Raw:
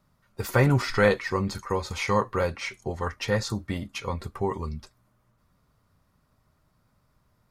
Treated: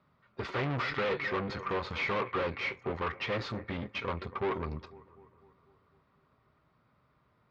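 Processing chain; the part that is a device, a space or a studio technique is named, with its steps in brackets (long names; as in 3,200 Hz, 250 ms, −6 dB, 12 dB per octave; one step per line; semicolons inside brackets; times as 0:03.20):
analogue delay pedal into a guitar amplifier (bucket-brigade delay 250 ms, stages 4,096, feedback 57%, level −23 dB; tube saturation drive 34 dB, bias 0.75; loudspeaker in its box 80–3,800 Hz, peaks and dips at 97 Hz −6 dB, 190 Hz −3 dB, 410 Hz +4 dB, 1,200 Hz +4 dB, 2,200 Hz +3 dB)
level +4 dB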